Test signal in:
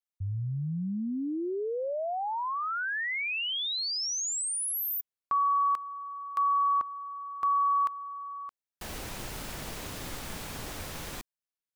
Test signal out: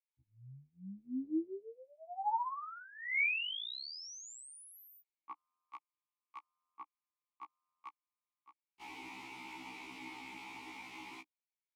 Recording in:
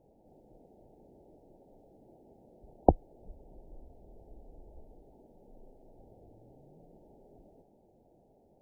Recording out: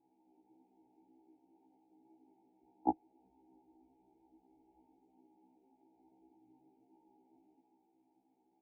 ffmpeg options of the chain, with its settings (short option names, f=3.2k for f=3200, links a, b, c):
-filter_complex "[0:a]asplit=3[a][b][c];[a]bandpass=f=300:t=q:w=8,volume=0dB[d];[b]bandpass=f=870:t=q:w=8,volume=-6dB[e];[c]bandpass=f=2.24k:t=q:w=8,volume=-9dB[f];[d][e][f]amix=inputs=3:normalize=0,tiltshelf=f=730:g=-7.5,afftfilt=real='re*1.73*eq(mod(b,3),0)':imag='im*1.73*eq(mod(b,3),0)':win_size=2048:overlap=0.75,volume=7.5dB"